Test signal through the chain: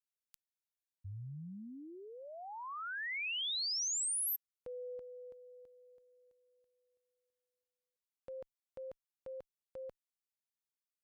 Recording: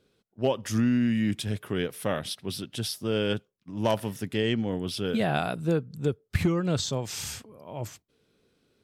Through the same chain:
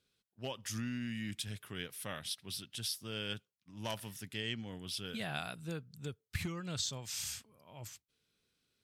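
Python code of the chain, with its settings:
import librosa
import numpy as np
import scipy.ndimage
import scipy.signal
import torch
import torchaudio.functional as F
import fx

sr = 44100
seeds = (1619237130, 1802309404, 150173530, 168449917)

y = fx.tone_stack(x, sr, knobs='5-5-5')
y = F.gain(torch.from_numpy(y), 2.0).numpy()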